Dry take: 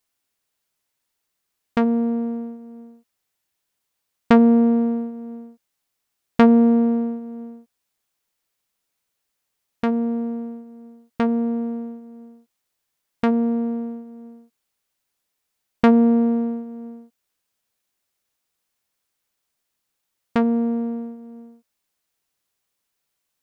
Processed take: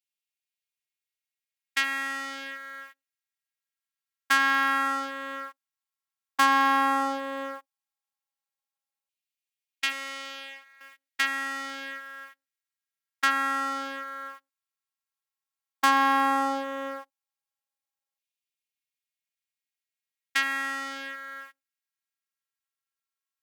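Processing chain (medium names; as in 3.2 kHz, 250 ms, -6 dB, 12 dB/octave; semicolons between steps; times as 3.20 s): 9.92–10.81 s: tone controls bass -12 dB, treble -7 dB; waveshaping leveller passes 5; robot voice 272 Hz; LFO high-pass saw down 0.11 Hz 730–2600 Hz; trim -3.5 dB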